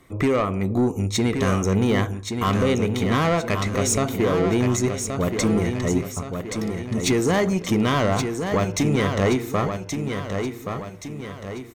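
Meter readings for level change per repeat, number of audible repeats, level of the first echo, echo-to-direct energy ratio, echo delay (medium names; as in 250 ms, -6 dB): -6.5 dB, 5, -6.5 dB, -5.5 dB, 1125 ms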